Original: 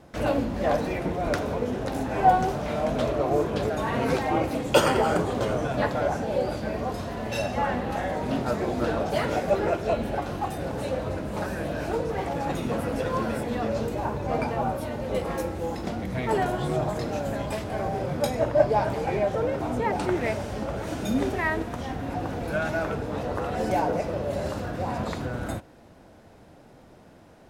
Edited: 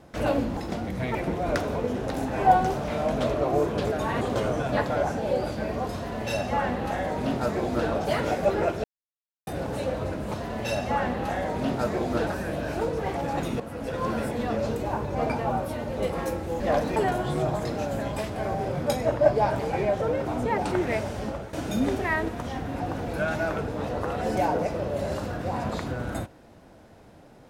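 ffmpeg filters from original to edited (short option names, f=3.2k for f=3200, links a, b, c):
-filter_complex "[0:a]asplit=12[a][b][c][d][e][f][g][h][i][j][k][l];[a]atrim=end=0.572[m];[b]atrim=start=15.718:end=16.302[n];[c]atrim=start=0.928:end=3.992[o];[d]atrim=start=5.258:end=9.89,asetpts=PTS-STARTPTS,afade=t=out:st=4.628:d=0.004:c=hsin[p];[e]atrim=start=9.89:end=10.52,asetpts=PTS-STARTPTS,volume=0[q];[f]atrim=start=10.52:end=11.392,asetpts=PTS-STARTPTS,afade=t=in:d=0.004:c=hsin[r];[g]atrim=start=7.008:end=8.942[s];[h]atrim=start=11.388:end=12.72,asetpts=PTS-STARTPTS,afade=t=out:st=1.328:d=0.004:c=hsin:silence=0.237137[t];[i]atrim=start=12.72:end=15.722,asetpts=PTS-STARTPTS,afade=t=in:d=0.54:silence=0.237137[u];[j]atrim=start=0.568:end=0.932[v];[k]atrim=start=16.298:end=20.87,asetpts=PTS-STARTPTS,afade=t=out:st=4.312:d=0.26:silence=0.237137[w];[l]atrim=start=20.87,asetpts=PTS-STARTPTS,afade=t=in:d=0.004:c=hsin:silence=0.237137[x];[m][n]acrossfade=d=0.004:c1=hsin:c2=hsin[y];[y][o]acrossfade=d=0.004:c1=hsin:c2=hsin[z];[p][q][r]concat=n=3:v=0:a=1[aa];[z][aa]acrossfade=d=0.004:c1=hsin:c2=hsin[ab];[ab][s]acrossfade=d=0.004:c1=hsin:c2=hsin[ac];[t][u]concat=n=2:v=0:a=1[ad];[ac][ad]acrossfade=d=0.004:c1=hsin:c2=hsin[ae];[ae][v]acrossfade=d=0.004:c1=hsin:c2=hsin[af];[w][x]concat=n=2:v=0:a=1[ag];[af][ag]acrossfade=d=0.004:c1=hsin:c2=hsin"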